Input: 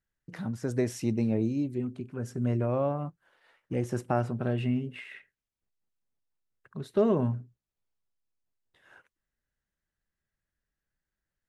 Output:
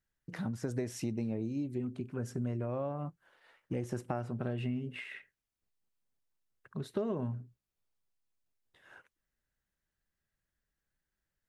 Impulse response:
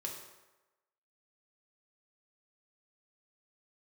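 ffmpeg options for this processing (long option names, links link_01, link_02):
-af "acompressor=threshold=-32dB:ratio=5"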